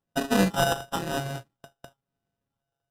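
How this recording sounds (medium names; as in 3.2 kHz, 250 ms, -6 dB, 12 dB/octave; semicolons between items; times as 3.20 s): a buzz of ramps at a fixed pitch in blocks of 64 samples; phasing stages 6, 1 Hz, lowest notch 260–2400 Hz; aliases and images of a low sample rate 2.2 kHz, jitter 0%; Vorbis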